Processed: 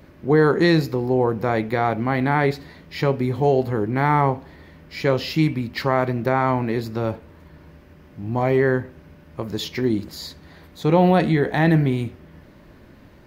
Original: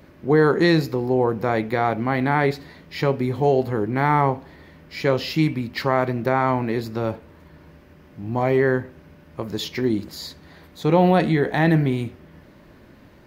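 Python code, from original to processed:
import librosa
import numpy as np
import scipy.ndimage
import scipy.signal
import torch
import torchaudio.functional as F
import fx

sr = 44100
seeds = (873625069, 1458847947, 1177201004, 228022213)

y = fx.low_shelf(x, sr, hz=91.0, db=5.0)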